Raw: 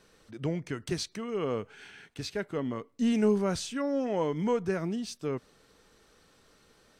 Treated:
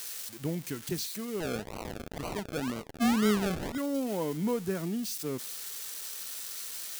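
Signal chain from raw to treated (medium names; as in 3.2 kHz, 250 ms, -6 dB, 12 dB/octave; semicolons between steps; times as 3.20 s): zero-crossing glitches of -25 dBFS; dynamic bell 230 Hz, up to +6 dB, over -42 dBFS, Q 0.95; 1.40–3.78 s: decimation with a swept rate 36×, swing 60% 2 Hz; trim -5.5 dB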